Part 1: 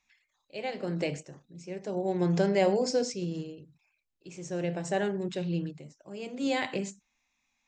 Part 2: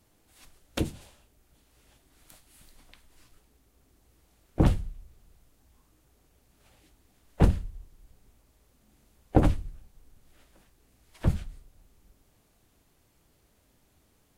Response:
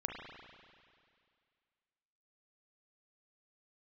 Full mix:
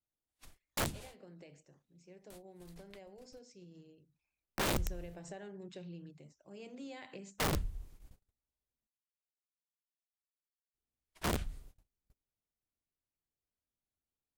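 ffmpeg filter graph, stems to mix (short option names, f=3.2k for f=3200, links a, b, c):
-filter_complex "[0:a]acompressor=threshold=-35dB:ratio=8,adelay=400,volume=-9.5dB,afade=t=in:st=4.48:d=0.23:silence=0.446684[a];[1:a]agate=range=-32dB:threshold=-53dB:ratio=16:detection=peak,alimiter=limit=-17dB:level=0:latency=1:release=11,volume=-0.5dB,asplit=3[b][c][d];[b]atrim=end=8.87,asetpts=PTS-STARTPTS,afade=t=out:st=8.866:d=0.004:c=hsin[e];[c]atrim=start=8.87:end=10.74,asetpts=PTS-STARTPTS,volume=0[f];[d]atrim=start=10.74,asetpts=PTS-STARTPTS,afade=t=in:d=0.004:c=hsin[g];[e][f][g]concat=n=3:v=0:a=1[h];[a][h]amix=inputs=2:normalize=0,aeval=exprs='(mod(22.4*val(0)+1,2)-1)/22.4':c=same"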